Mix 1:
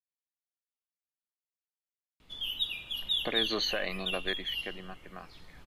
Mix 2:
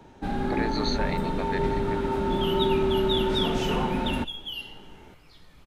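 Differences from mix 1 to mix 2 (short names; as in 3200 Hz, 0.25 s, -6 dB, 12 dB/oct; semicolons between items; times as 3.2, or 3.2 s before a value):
speech: entry -2.75 s; first sound: unmuted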